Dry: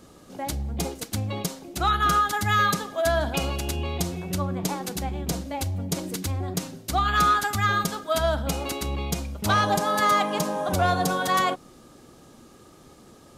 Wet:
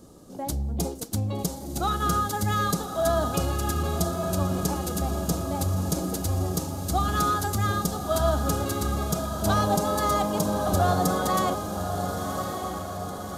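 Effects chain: bell 2200 Hz -13.5 dB 1.6 oct; diffused feedback echo 1.17 s, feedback 58%, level -6.5 dB; gain +1.5 dB

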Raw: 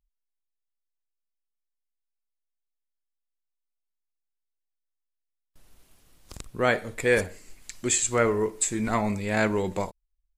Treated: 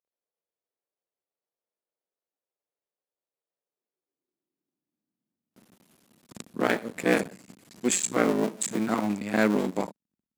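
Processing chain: cycle switcher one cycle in 2, muted; high-pass sweep 490 Hz -> 210 Hz, 3.54–5.51; spectral noise reduction 7 dB

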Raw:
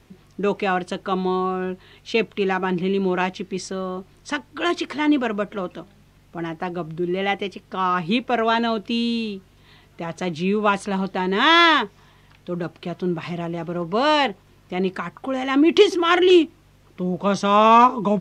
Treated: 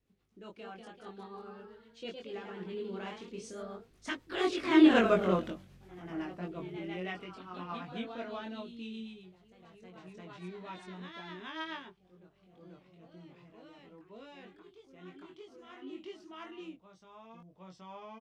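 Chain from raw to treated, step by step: Doppler pass-by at 5.15, 19 m/s, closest 5.2 m; rotary speaker horn 8 Hz, later 0.75 Hz, at 11.56; echoes that change speed 0.225 s, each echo +1 st, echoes 3, each echo -6 dB; doubler 22 ms -2.5 dB

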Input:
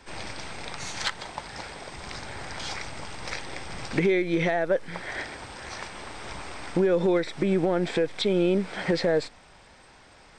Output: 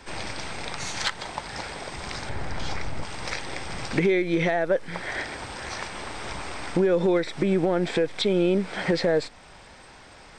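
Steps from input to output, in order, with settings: 2.29–3.03 tilt -2 dB/oct; in parallel at -2.5 dB: compressor, threshold -36 dBFS, peak gain reduction 16 dB

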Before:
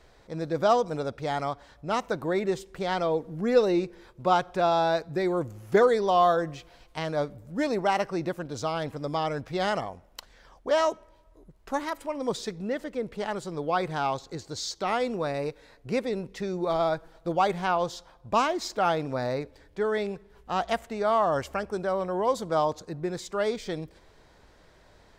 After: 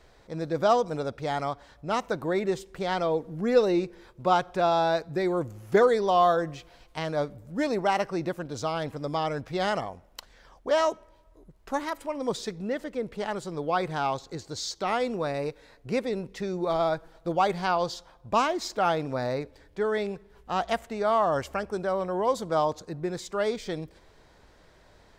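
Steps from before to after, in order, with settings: 17.54–17.94 bell 4600 Hz +11.5 dB 0.24 oct

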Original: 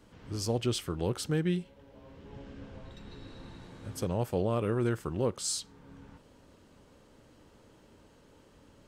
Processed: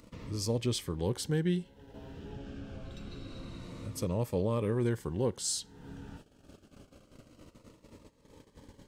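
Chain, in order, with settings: gate -55 dBFS, range -30 dB; upward compressor, threshold -36 dBFS; cascading phaser falling 0.26 Hz

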